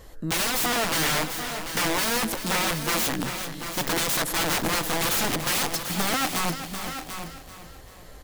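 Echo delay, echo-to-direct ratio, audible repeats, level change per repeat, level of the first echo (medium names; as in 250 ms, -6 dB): 388 ms, -6.5 dB, 8, no regular repeats, -11.0 dB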